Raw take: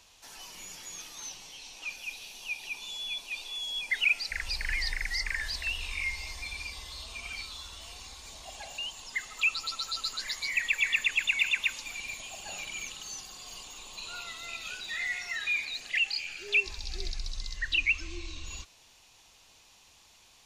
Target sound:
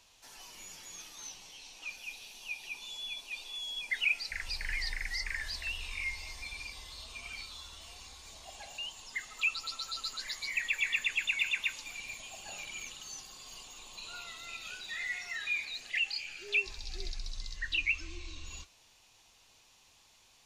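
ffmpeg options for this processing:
-af "flanger=delay=7.4:depth=3.1:regen=-61:speed=0.3:shape=triangular"

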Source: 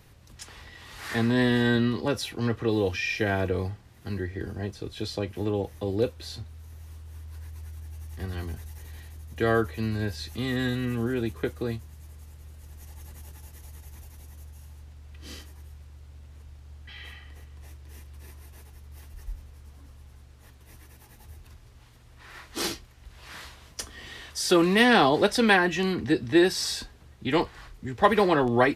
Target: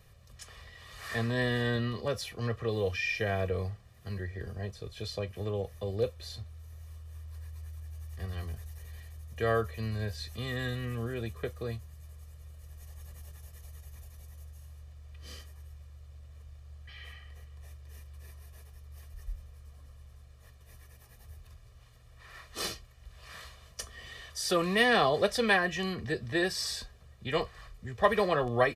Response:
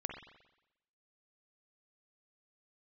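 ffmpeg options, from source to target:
-af "aecho=1:1:1.7:0.68,volume=-6.5dB"

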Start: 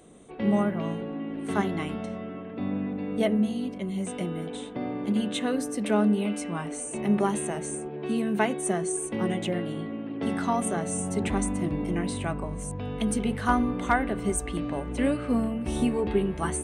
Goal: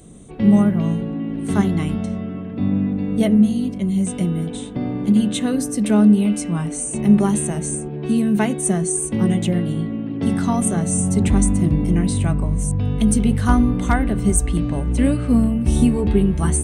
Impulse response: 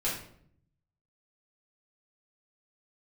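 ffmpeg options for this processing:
-af "bass=f=250:g=15,treble=f=4k:g=9,volume=1.5dB"

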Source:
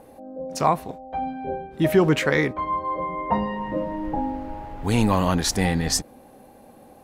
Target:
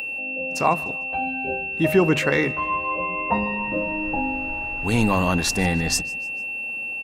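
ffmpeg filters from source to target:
-filter_complex "[0:a]bandreject=f=50:t=h:w=6,bandreject=f=100:t=h:w=6,bandreject=f=150:t=h:w=6,asplit=2[a][b];[b]aecho=0:1:150|300|450:0.0794|0.0357|0.0161[c];[a][c]amix=inputs=2:normalize=0,aeval=exprs='val(0)+0.0447*sin(2*PI*2700*n/s)':c=same,acompressor=mode=upward:threshold=-41dB:ratio=2.5"

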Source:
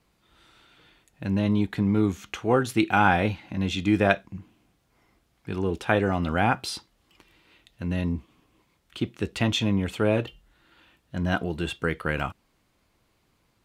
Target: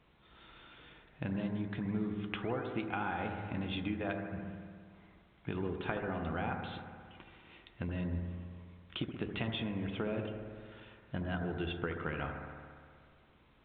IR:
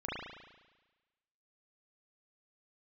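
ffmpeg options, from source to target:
-filter_complex "[0:a]bandreject=f=99.92:t=h:w=4,bandreject=f=199.84:t=h:w=4,bandreject=f=299.76:t=h:w=4,bandreject=f=399.68:t=h:w=4,acompressor=threshold=-34dB:ratio=12,asplit=2[a][b];[1:a]atrim=start_sample=2205,asetrate=27342,aresample=44100,adelay=14[c];[b][c]afir=irnorm=-1:irlink=0,volume=-11dB[d];[a][d]amix=inputs=2:normalize=0" -ar 8000 -c:a pcm_alaw

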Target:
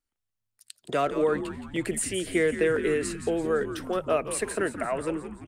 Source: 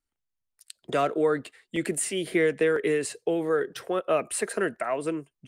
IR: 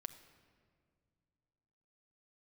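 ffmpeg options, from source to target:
-filter_complex "[0:a]asplit=7[a][b][c][d][e][f][g];[b]adelay=170,afreqshift=-110,volume=-10.5dB[h];[c]adelay=340,afreqshift=-220,volume=-16.2dB[i];[d]adelay=510,afreqshift=-330,volume=-21.9dB[j];[e]adelay=680,afreqshift=-440,volume=-27.5dB[k];[f]adelay=850,afreqshift=-550,volume=-33.2dB[l];[g]adelay=1020,afreqshift=-660,volume=-38.9dB[m];[a][h][i][j][k][l][m]amix=inputs=7:normalize=0,volume=-1dB"

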